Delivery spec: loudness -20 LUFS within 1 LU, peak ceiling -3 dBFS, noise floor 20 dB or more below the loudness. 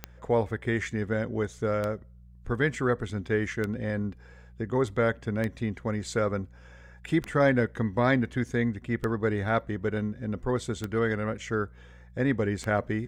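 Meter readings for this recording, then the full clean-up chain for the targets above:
clicks found 8; hum 60 Hz; highest harmonic 180 Hz; hum level -49 dBFS; loudness -29.0 LUFS; peak level -11.0 dBFS; loudness target -20.0 LUFS
-> de-click; de-hum 60 Hz, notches 3; trim +9 dB; peak limiter -3 dBFS

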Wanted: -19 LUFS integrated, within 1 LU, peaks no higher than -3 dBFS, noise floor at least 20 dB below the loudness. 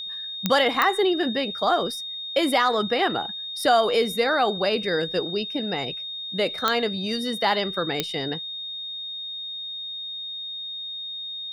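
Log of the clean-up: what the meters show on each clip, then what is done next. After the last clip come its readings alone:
clicks found 4; steady tone 3.7 kHz; tone level -31 dBFS; loudness -24.5 LUFS; peak level -5.0 dBFS; loudness target -19.0 LUFS
-> de-click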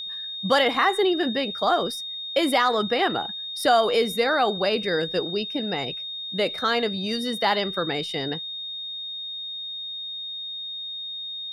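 clicks found 0; steady tone 3.7 kHz; tone level -31 dBFS
-> band-stop 3.7 kHz, Q 30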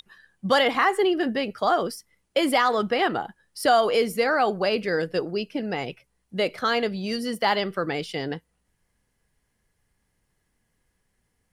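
steady tone not found; loudness -24.0 LUFS; peak level -8.5 dBFS; loudness target -19.0 LUFS
-> trim +5 dB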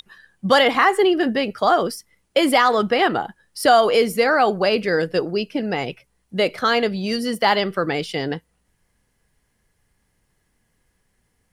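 loudness -19.0 LUFS; peak level -3.5 dBFS; noise floor -69 dBFS

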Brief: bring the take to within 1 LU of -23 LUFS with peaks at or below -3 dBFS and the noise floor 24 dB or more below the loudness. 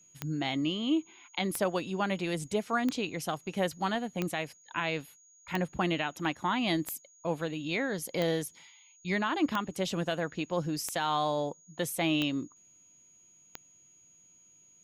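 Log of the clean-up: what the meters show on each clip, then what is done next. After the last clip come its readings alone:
clicks found 11; steady tone 6.7 kHz; tone level -58 dBFS; loudness -32.0 LUFS; peak level -13.5 dBFS; loudness target -23.0 LUFS
-> de-click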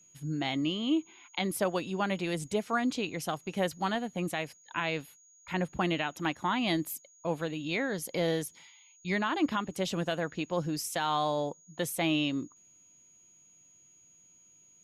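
clicks found 0; steady tone 6.7 kHz; tone level -58 dBFS
-> band-stop 6.7 kHz, Q 30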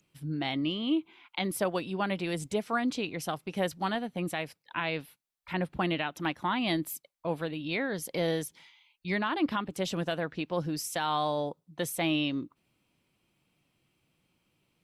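steady tone not found; loudness -32.0 LUFS; peak level -18.5 dBFS; loudness target -23.0 LUFS
-> trim +9 dB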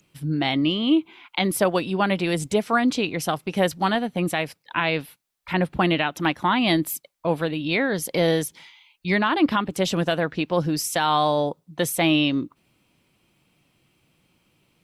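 loudness -23.0 LUFS; peak level -9.5 dBFS; noise floor -69 dBFS

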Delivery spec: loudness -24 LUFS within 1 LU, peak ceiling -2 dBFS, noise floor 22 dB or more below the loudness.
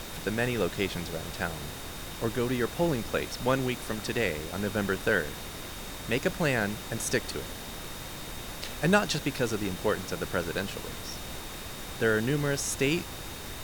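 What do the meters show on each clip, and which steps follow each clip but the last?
steady tone 3.7 kHz; tone level -49 dBFS; noise floor -40 dBFS; noise floor target -53 dBFS; loudness -30.5 LUFS; peak level -10.5 dBFS; loudness target -24.0 LUFS
-> band-stop 3.7 kHz, Q 30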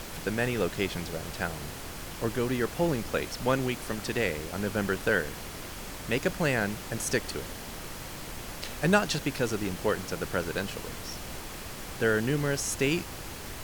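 steady tone not found; noise floor -41 dBFS; noise floor target -53 dBFS
-> noise print and reduce 12 dB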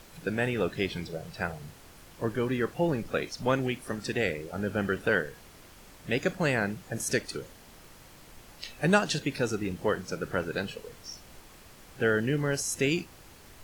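noise floor -53 dBFS; loudness -30.0 LUFS; peak level -10.0 dBFS; loudness target -24.0 LUFS
-> trim +6 dB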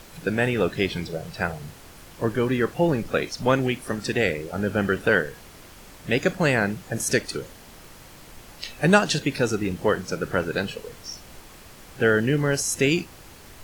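loudness -24.0 LUFS; peak level -4.0 dBFS; noise floor -47 dBFS

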